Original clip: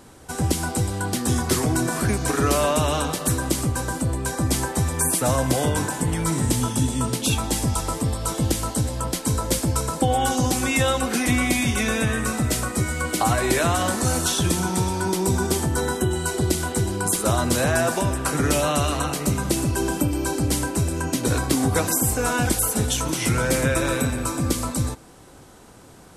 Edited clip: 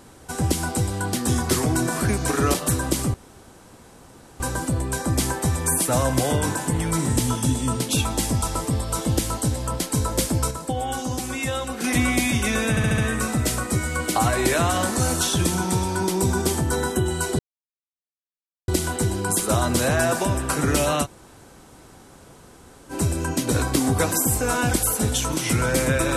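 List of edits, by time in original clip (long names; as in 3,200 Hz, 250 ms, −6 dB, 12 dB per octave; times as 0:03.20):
0:02.54–0:03.13: remove
0:03.73: splice in room tone 1.26 s
0:09.84–0:11.17: clip gain −6 dB
0:12.03: stutter 0.07 s, 5 plays
0:16.44: splice in silence 1.29 s
0:18.80–0:20.68: fill with room tone, crossfade 0.06 s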